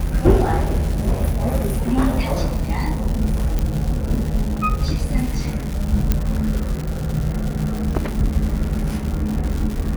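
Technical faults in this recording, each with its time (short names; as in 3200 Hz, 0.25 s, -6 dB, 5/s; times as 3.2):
crackle 300/s -24 dBFS
3.59 pop -9 dBFS
6.12 pop -4 dBFS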